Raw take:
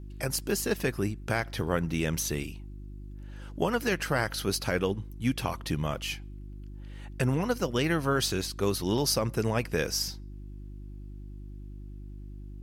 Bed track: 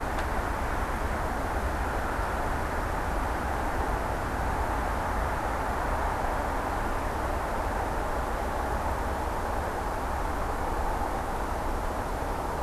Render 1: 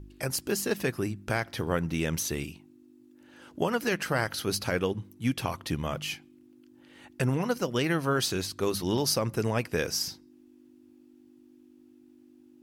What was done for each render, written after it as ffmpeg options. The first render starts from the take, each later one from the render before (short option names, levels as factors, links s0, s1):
-af "bandreject=f=50:t=h:w=4,bandreject=f=100:t=h:w=4,bandreject=f=150:t=h:w=4,bandreject=f=200:t=h:w=4"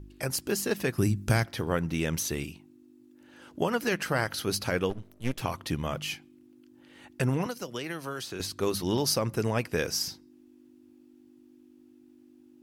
-filter_complex "[0:a]asettb=1/sr,asplit=3[s0][s1][s2];[s0]atrim=end=0.984[s3];[s1]atrim=start=0.98:end=1.46,asetpts=PTS-STARTPTS,afade=t=in:d=0.004:c=qsin,afade=t=out:st=0.476:d=0.004:c=qsin,bass=f=250:g=10,treble=f=4000:g=9[s4];[s2]atrim=start=1.456[s5];[s3][s4]acrossfade=d=0.004:c1=hsin:c2=qsin[s6];[s6][s5]acrossfade=d=0.004:c1=qsin:c2=hsin,asettb=1/sr,asplit=3[s7][s8][s9];[s7]atrim=end=4.904[s10];[s8]atrim=start=4.9:end=5.41,asetpts=PTS-STARTPTS,afade=t=in:d=0.004:c=qsin,afade=t=out:st=0.506:d=0.004:c=qsin,aeval=exprs='max(val(0),0)':c=same[s11];[s9]atrim=start=5.406[s12];[s10][s11]acrossfade=d=0.004:c1=hsin:c2=qsin[s13];[s13][s12]acrossfade=d=0.004:c1=qsin:c2=hsin,asettb=1/sr,asplit=3[s14][s15][s16];[s14]atrim=end=7.464[s17];[s15]atrim=start=7.46:end=8.4,asetpts=PTS-STARTPTS,afade=t=in:d=0.004:c=qsin,afade=t=out:st=0.936:d=0.004:c=qsin,acrossover=split=290|2900[s18][s19][s20];[s18]acompressor=threshold=0.00562:ratio=4[s21];[s19]acompressor=threshold=0.0158:ratio=4[s22];[s20]acompressor=threshold=0.00794:ratio=4[s23];[s21][s22][s23]amix=inputs=3:normalize=0[s24];[s16]atrim=start=8.396[s25];[s17][s24]acrossfade=d=0.004:c1=hsin:c2=qsin[s26];[s26][s25]acrossfade=d=0.004:c1=qsin:c2=hsin"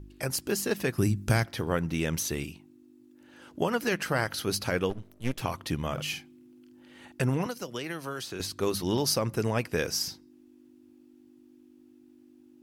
-filter_complex "[0:a]asettb=1/sr,asplit=3[s0][s1][s2];[s0]atrim=end=5.934[s3];[s1]atrim=start=5.93:end=7.12,asetpts=PTS-STARTPTS,afade=t=in:d=0.004:c=qsin,afade=t=out:st=1.186:d=0.004:c=qsin,asplit=2[s4][s5];[s5]adelay=48,volume=0.531[s6];[s4][s6]amix=inputs=2:normalize=0,atrim=end_sample=52479[s7];[s2]atrim=start=7.116[s8];[s3][s7]acrossfade=d=0.004:c1=hsin:c2=qsin[s9];[s9][s8]acrossfade=d=0.004:c1=qsin:c2=hsin"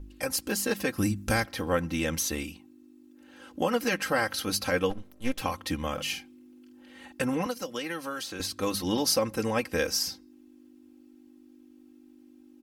-af "equalizer=f=230:w=1.7:g=-3,aecho=1:1:3.8:0.79"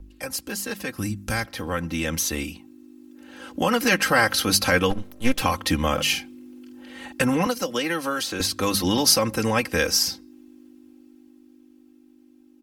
-filter_complex "[0:a]acrossover=split=200|830|4200[s0][s1][s2][s3];[s1]alimiter=level_in=1.58:limit=0.0631:level=0:latency=1,volume=0.631[s4];[s0][s4][s2][s3]amix=inputs=4:normalize=0,dynaudnorm=f=390:g=13:m=3.35"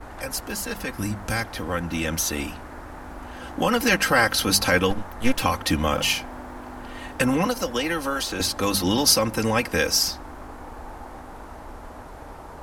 -filter_complex "[1:a]volume=0.335[s0];[0:a][s0]amix=inputs=2:normalize=0"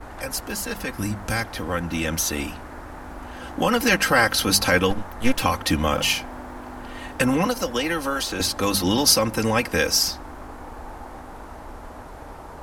-af "volume=1.12"